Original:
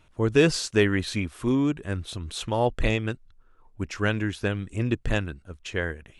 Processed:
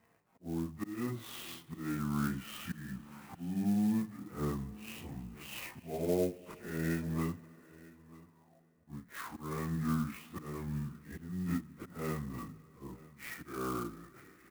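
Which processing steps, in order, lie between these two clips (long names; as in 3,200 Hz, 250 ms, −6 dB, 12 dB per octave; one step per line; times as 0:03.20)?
phase-vocoder pitch shift without resampling +9.5 semitones
parametric band 390 Hz +5.5 dB 0.56 octaves
downward compressor 5 to 1, threshold −26 dBFS, peak gain reduction 11 dB
volume swells 149 ms
single-tap delay 401 ms −20.5 dB
four-comb reverb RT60 2 s, combs from 30 ms, DRR 19 dB
wrong playback speed 78 rpm record played at 33 rpm
band-pass filter 160–2,300 Hz
converter with an unsteady clock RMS 0.044 ms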